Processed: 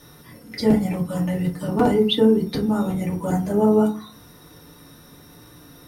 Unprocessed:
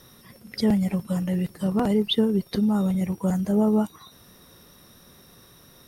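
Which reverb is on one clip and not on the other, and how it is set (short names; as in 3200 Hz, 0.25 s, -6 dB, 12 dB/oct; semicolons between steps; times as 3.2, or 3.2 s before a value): FDN reverb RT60 0.36 s, low-frequency decay 1.3×, high-frequency decay 0.5×, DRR -3 dB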